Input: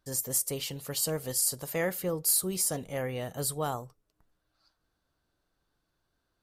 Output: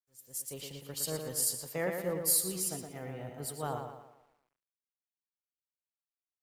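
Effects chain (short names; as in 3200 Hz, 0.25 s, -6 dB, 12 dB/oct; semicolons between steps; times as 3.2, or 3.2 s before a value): opening faded in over 0.61 s; 2.58–3.63 notch comb 560 Hz; tape echo 0.116 s, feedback 62%, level -3.5 dB, low-pass 5300 Hz; bit-crush 9-bit; three-band expander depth 70%; gain -6.5 dB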